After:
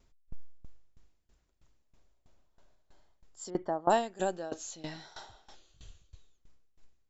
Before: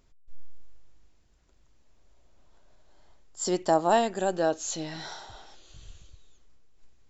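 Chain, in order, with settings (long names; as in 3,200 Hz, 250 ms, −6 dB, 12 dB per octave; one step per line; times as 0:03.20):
0:03.50–0:03.90: Savitzky-Golay smoothing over 41 samples
tremolo with a ramp in dB decaying 3.1 Hz, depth 19 dB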